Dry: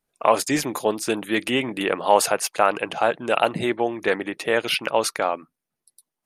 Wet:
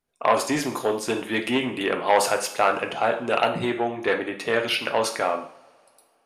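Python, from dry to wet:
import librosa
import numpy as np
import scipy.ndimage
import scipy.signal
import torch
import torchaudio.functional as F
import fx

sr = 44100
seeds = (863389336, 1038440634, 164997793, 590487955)

y = fx.high_shelf(x, sr, hz=8000.0, db=-7.0)
y = fx.rev_double_slope(y, sr, seeds[0], early_s=0.54, late_s=2.8, knee_db=-26, drr_db=4.0)
y = fx.transformer_sat(y, sr, knee_hz=1200.0)
y = y * 10.0 ** (-1.5 / 20.0)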